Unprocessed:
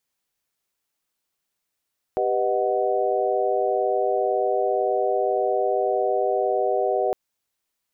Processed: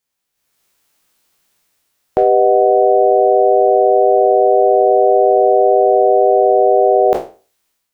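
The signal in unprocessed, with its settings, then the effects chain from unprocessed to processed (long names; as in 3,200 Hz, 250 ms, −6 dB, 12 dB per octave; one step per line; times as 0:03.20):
held notes G4/B4/D#5/F#5 sine, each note −25 dBFS 4.96 s
peak hold with a decay on every bin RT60 0.36 s
automatic gain control gain up to 15.5 dB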